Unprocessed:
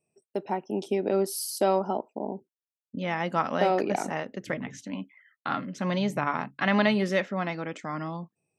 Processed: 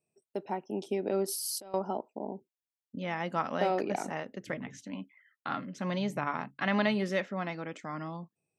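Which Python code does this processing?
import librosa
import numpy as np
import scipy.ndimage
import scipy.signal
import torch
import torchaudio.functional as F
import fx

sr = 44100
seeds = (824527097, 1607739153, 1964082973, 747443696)

y = fx.over_compress(x, sr, threshold_db=-35.0, ratio=-1.0, at=(1.28, 1.74))
y = y * librosa.db_to_amplitude(-5.0)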